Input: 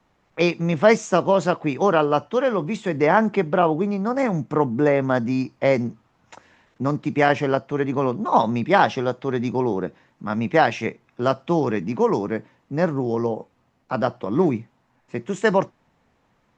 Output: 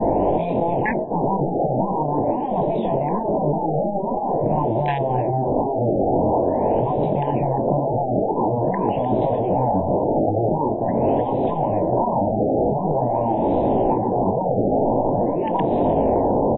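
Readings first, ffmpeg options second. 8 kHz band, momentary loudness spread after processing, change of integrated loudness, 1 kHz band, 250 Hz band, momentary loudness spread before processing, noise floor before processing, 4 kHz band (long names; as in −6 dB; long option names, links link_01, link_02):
can't be measured, 3 LU, +1.0 dB, +3.0 dB, +1.5 dB, 11 LU, −65 dBFS, below −10 dB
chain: -af "aeval=exprs='val(0)+0.5*0.0944*sgn(val(0))':channel_layout=same,flanger=delay=18.5:depth=4.3:speed=0.87,firequalizer=gain_entry='entry(170,0);entry(290,9);entry(620,14);entry(1700,-26);entry(2600,-20)':delay=0.05:min_phase=1,volume=-1dB,asoftclip=hard,volume=1dB,alimiter=limit=-4dB:level=0:latency=1:release=142,adynamicequalizer=threshold=0.0794:dfrequency=550:dqfactor=1.9:tfrequency=550:tqfactor=1.9:attack=5:release=100:ratio=0.375:range=1.5:mode=cutabove:tftype=bell,asuperstop=centerf=1300:order=8:qfactor=2,afftfilt=real='re*lt(hypot(re,im),0.501)':imag='im*lt(hypot(re,im),0.501)':win_size=1024:overlap=0.75,acontrast=68,aecho=1:1:303|606|909|1212|1515:0.141|0.0735|0.0382|0.0199|0.0103,afftfilt=real='re*lt(b*sr/1024,830*pow(4000/830,0.5+0.5*sin(2*PI*0.46*pts/sr)))':imag='im*lt(b*sr/1024,830*pow(4000/830,0.5+0.5*sin(2*PI*0.46*pts/sr)))':win_size=1024:overlap=0.75"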